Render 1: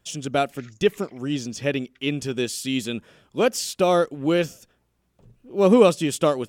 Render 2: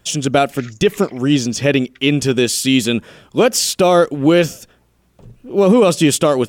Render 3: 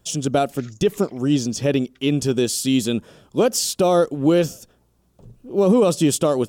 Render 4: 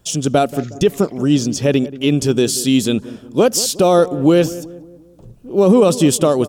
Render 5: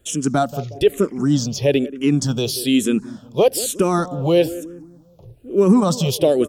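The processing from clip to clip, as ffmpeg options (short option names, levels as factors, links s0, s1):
-af "alimiter=level_in=5.31:limit=0.891:release=50:level=0:latency=1,volume=0.75"
-af "equalizer=f=2100:t=o:w=1.3:g=-9,volume=0.631"
-filter_complex "[0:a]asplit=2[s0][s1];[s1]adelay=182,lowpass=f=970:p=1,volume=0.168,asplit=2[s2][s3];[s3]adelay=182,lowpass=f=970:p=1,volume=0.5,asplit=2[s4][s5];[s5]adelay=182,lowpass=f=970:p=1,volume=0.5,asplit=2[s6][s7];[s7]adelay=182,lowpass=f=970:p=1,volume=0.5,asplit=2[s8][s9];[s9]adelay=182,lowpass=f=970:p=1,volume=0.5[s10];[s0][s2][s4][s6][s8][s10]amix=inputs=6:normalize=0,volume=1.68"
-filter_complex "[0:a]asplit=2[s0][s1];[s1]afreqshift=-1.1[s2];[s0][s2]amix=inputs=2:normalize=1"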